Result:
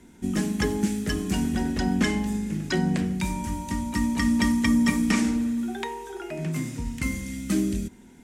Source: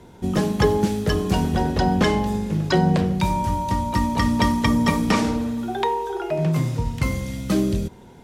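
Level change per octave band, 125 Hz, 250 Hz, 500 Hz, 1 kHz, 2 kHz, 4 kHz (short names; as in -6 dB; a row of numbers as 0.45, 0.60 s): -8.0, -2.0, -10.0, -11.5, -2.5, -4.5 dB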